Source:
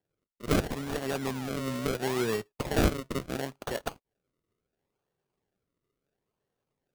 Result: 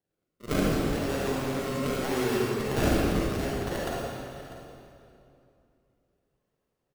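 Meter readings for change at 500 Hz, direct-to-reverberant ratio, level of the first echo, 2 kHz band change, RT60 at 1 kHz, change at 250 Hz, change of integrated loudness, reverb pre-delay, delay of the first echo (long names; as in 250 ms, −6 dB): +3.0 dB, −6.0 dB, −15.0 dB, +2.5 dB, 2.7 s, +4.0 dB, +3.0 dB, 34 ms, 646 ms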